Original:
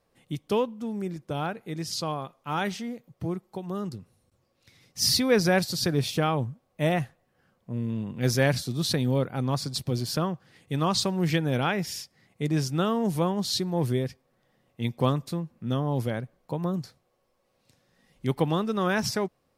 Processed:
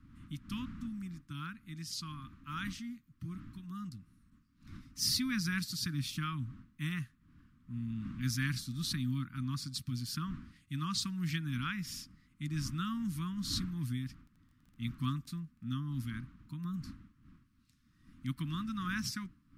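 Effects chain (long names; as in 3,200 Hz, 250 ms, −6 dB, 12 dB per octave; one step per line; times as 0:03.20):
wind on the microphone 390 Hz −43 dBFS
elliptic band-stop filter 270–1,200 Hz, stop band 40 dB
0:14.02–0:16.09: surface crackle 24 per second −44 dBFS
level −8 dB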